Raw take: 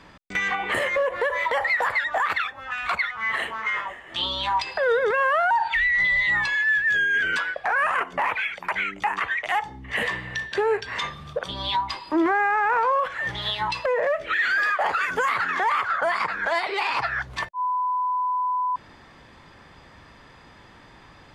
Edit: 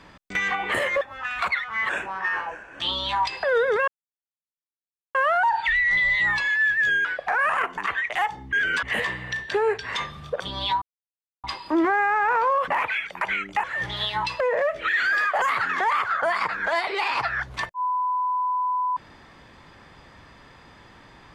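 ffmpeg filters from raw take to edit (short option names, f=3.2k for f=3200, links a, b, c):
-filter_complex "[0:a]asplit=13[a][b][c][d][e][f][g][h][i][j][k][l][m];[a]atrim=end=1.012[n];[b]atrim=start=2.478:end=3.364[o];[c]atrim=start=3.36:end=4.14,asetpts=PTS-STARTPTS,asetrate=37926,aresample=44100[p];[d]atrim=start=4.136:end=5.22,asetpts=PTS-STARTPTS,afade=t=out:st=1.08:d=0.004:c=hsin,apad=pad_dur=1.27[q];[e]atrim=start=5.22:end=7.122,asetpts=PTS-STARTPTS,afade=t=in:d=0.004:c=hsin[r];[f]atrim=start=7.418:end=8.152[s];[g]atrim=start=9.108:end=9.862[t];[h]atrim=start=7.118:end=7.422[u];[i]atrim=start=9.858:end=11.85,asetpts=PTS-STARTPTS,afade=t=out:st=1.988:d=0.004:c=hsin,apad=pad_dur=0.62[v];[j]atrim=start=11.85:end=13.092,asetpts=PTS-STARTPTS,afade=t=in:d=0.004:c=hsin[w];[k]atrim=start=8.148:end=9.112[x];[l]atrim=start=13.088:end=14.872[y];[m]atrim=start=15.208[z];[n][o]acrossfade=d=0.004:c1=hsin:c2=hsin[aa];[aa][p]acrossfade=d=0.004:c1=hsin:c2=hsin[ab];[q][r]concat=n=2:v=0:a=1[ac];[ab][ac]acrossfade=d=0.004:c1=hsin:c2=hsin[ad];[ad][s]acrossfade=d=0.004:c1=hsin:c2=hsin[ae];[ae][t]acrossfade=d=0.004:c1=hsin:c2=hsin[af];[af][u]acrossfade=d=0.004:c1=hsin:c2=hsin[ag];[v][w]concat=n=2:v=0:a=1[ah];[ag][ah]acrossfade=d=0.004:c1=hsin:c2=hsin[ai];[ai][x]acrossfade=d=0.004:c1=hsin:c2=hsin[aj];[aj][y]acrossfade=d=0.004:c1=hsin:c2=hsin[ak];[ak][z]acrossfade=d=0.004:c1=hsin:c2=hsin"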